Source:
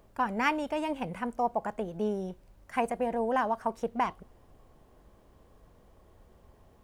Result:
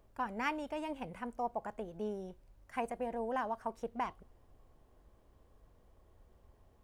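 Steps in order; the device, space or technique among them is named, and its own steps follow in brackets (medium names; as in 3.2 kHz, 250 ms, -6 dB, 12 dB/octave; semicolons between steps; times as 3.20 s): low shelf boost with a cut just above (bass shelf 110 Hz +5 dB; peaking EQ 180 Hz -4 dB 0.52 oct); trim -8 dB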